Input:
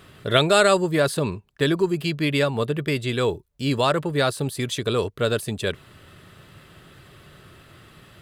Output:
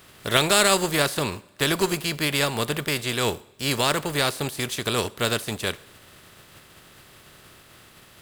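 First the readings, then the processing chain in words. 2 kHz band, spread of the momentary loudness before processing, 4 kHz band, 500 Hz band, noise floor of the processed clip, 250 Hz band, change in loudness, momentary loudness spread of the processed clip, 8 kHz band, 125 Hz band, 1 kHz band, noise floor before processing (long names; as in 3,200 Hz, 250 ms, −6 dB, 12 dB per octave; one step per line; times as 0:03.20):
+1.0 dB, 10 LU, +3.0 dB, −4.5 dB, −52 dBFS, −4.0 dB, −1.0 dB, 10 LU, +7.0 dB, −4.5 dB, −0.5 dB, −51 dBFS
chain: compressing power law on the bin magnitudes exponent 0.54
coupled-rooms reverb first 0.64 s, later 3.4 s, from −22 dB, DRR 17 dB
level −2 dB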